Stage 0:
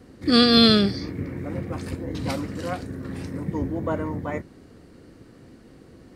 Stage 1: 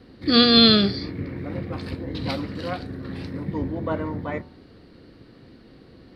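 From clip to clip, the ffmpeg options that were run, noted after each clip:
-filter_complex "[0:a]highshelf=f=5400:t=q:w=3:g=-8.5,acrossover=split=4700[s0][s1];[s1]acompressor=threshold=0.0251:ratio=4:attack=1:release=60[s2];[s0][s2]amix=inputs=2:normalize=0,bandreject=f=82.19:t=h:w=4,bandreject=f=164.38:t=h:w=4,bandreject=f=246.57:t=h:w=4,bandreject=f=328.76:t=h:w=4,bandreject=f=410.95:t=h:w=4,bandreject=f=493.14:t=h:w=4,bandreject=f=575.33:t=h:w=4,bandreject=f=657.52:t=h:w=4,bandreject=f=739.71:t=h:w=4,bandreject=f=821.9:t=h:w=4,bandreject=f=904.09:t=h:w=4,bandreject=f=986.28:t=h:w=4,bandreject=f=1068.47:t=h:w=4,bandreject=f=1150.66:t=h:w=4,bandreject=f=1232.85:t=h:w=4,bandreject=f=1315.04:t=h:w=4,bandreject=f=1397.23:t=h:w=4,bandreject=f=1479.42:t=h:w=4,bandreject=f=1561.61:t=h:w=4"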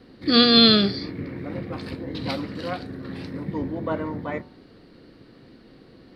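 -af "equalizer=f=72:w=1.3:g=-8"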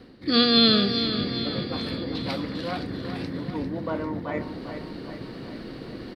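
-af "areverse,acompressor=mode=upward:threshold=0.0891:ratio=2.5,areverse,aecho=1:1:398|796|1194|1592|1990|2388|2786:0.355|0.213|0.128|0.0766|0.046|0.0276|0.0166,volume=0.668"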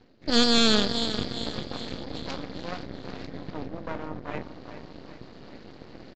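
-af "aeval=exprs='max(val(0),0)':c=same,aeval=exprs='0.562*(cos(1*acos(clip(val(0)/0.562,-1,1)))-cos(1*PI/2))+0.224*(cos(6*acos(clip(val(0)/0.562,-1,1)))-cos(6*PI/2))':c=same,aresample=16000,aresample=44100,volume=0.473"

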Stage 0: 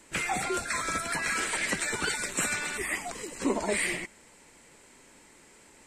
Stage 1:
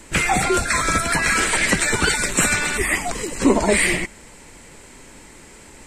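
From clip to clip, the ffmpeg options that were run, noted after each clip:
-af "acontrast=76,lowshelf=f=120:g=12,volume=1.58"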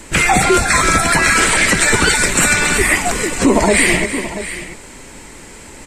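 -filter_complex "[0:a]asplit=2[s0][s1];[s1]aecho=0:1:332|682:0.211|0.178[s2];[s0][s2]amix=inputs=2:normalize=0,alimiter=level_in=2.51:limit=0.891:release=50:level=0:latency=1,volume=0.891"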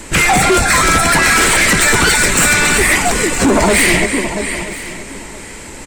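-filter_complex "[0:a]asplit=2[s0][s1];[s1]aeval=exprs='0.794*sin(PI/2*2.51*val(0)/0.794)':c=same,volume=0.531[s2];[s0][s2]amix=inputs=2:normalize=0,aecho=1:1:970:0.15,volume=0.562"

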